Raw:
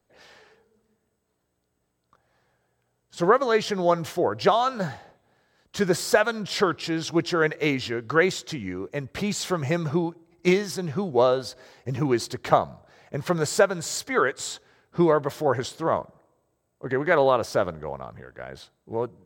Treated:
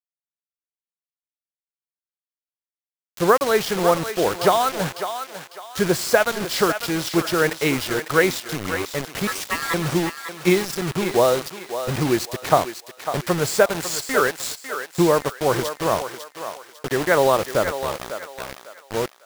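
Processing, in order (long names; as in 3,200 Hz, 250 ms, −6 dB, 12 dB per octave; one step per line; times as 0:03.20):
0:09.27–0:09.74: ring modulation 1,500 Hz
bit reduction 5 bits
feedback echo with a high-pass in the loop 550 ms, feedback 36%, high-pass 570 Hz, level −8 dB
level +2.5 dB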